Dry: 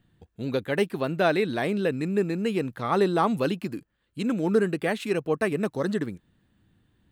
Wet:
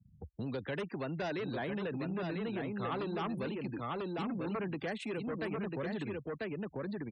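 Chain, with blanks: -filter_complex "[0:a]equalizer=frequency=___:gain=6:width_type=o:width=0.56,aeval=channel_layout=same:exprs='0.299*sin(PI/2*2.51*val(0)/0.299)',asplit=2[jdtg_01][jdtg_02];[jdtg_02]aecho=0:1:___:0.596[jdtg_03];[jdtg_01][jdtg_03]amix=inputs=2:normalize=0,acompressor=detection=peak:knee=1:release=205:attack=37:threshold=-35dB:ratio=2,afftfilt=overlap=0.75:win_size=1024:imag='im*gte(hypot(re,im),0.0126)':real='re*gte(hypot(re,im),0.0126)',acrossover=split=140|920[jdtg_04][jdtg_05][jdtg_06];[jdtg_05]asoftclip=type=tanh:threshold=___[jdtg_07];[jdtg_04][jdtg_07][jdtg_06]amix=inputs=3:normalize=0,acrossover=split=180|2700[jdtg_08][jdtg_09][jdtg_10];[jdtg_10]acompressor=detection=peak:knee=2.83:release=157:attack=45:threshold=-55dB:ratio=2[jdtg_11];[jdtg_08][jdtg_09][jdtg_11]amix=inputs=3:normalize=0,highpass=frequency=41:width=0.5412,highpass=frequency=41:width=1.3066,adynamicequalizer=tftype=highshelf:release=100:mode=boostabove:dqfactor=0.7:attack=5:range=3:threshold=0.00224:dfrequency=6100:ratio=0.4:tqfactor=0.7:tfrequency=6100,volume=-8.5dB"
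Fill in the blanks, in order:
66, 994, -25.5dB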